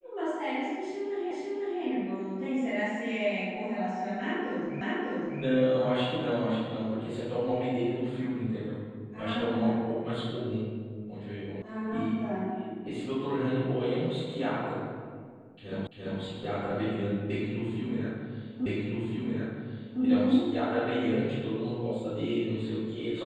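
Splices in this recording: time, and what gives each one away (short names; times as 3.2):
1.31 repeat of the last 0.5 s
4.81 repeat of the last 0.6 s
11.62 sound cut off
15.87 repeat of the last 0.34 s
18.66 repeat of the last 1.36 s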